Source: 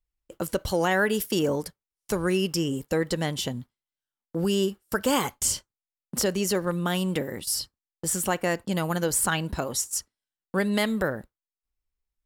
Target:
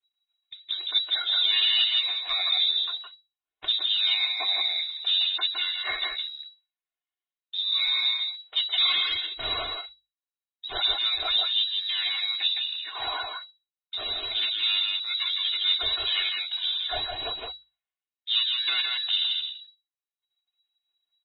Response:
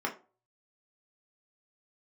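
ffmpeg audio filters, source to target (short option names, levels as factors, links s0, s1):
-filter_complex "[0:a]aeval=exprs='if(lt(val(0),0),0.251*val(0),val(0))':c=same,asetrate=25442,aresample=44100,lowpass=f=3300:t=q:w=0.5098,lowpass=f=3300:t=q:w=0.6013,lowpass=f=3300:t=q:w=0.9,lowpass=f=3300:t=q:w=2.563,afreqshift=-3900,aphaser=in_gain=1:out_gain=1:delay=1.9:decay=0.3:speed=1.1:type=triangular,asoftclip=type=tanh:threshold=0.15,adynamicequalizer=threshold=0.002:dfrequency=1600:dqfactor=7.6:tfrequency=1600:tqfactor=7.6:attack=5:release=100:ratio=0.375:range=2:mode=boostabove:tftype=bell,bandreject=f=50:t=h:w=6,bandreject=f=100:t=h:w=6,bandreject=f=150:t=h:w=6,aecho=1:1:2.8:0.88,asplit=2[s0][s1];[s1]aecho=0:1:163:0.668[s2];[s0][s2]amix=inputs=2:normalize=0" -ar 24000 -c:a libmp3lame -b:a 16k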